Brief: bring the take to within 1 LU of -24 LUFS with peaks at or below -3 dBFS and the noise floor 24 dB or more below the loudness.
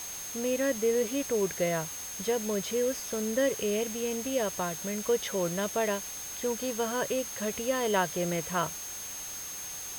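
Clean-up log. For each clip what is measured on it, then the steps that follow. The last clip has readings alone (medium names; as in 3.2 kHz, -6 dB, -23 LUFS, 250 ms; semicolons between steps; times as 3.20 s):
steady tone 6.4 kHz; tone level -39 dBFS; noise floor -40 dBFS; noise floor target -55 dBFS; loudness -30.5 LUFS; peak level -13.5 dBFS; loudness target -24.0 LUFS
-> band-stop 6.4 kHz, Q 30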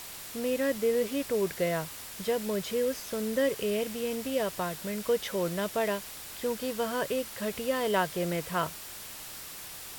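steady tone not found; noise floor -43 dBFS; noise floor target -56 dBFS
-> noise reduction 13 dB, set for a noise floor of -43 dBFS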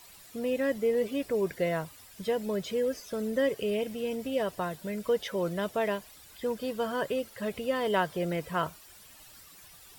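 noise floor -53 dBFS; noise floor target -56 dBFS
-> noise reduction 6 dB, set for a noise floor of -53 dBFS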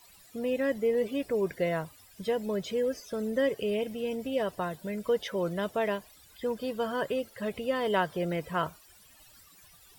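noise floor -57 dBFS; loudness -31.5 LUFS; peak level -14.0 dBFS; loudness target -24.0 LUFS
-> trim +7.5 dB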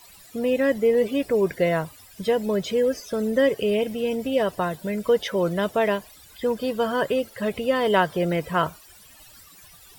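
loudness -24.0 LUFS; peak level -6.5 dBFS; noise floor -50 dBFS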